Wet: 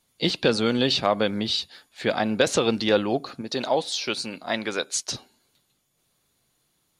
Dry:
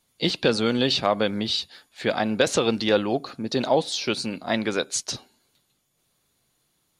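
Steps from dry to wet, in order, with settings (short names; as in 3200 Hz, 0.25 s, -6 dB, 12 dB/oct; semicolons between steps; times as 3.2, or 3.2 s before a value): 3.41–5.09 low shelf 350 Hz -8.5 dB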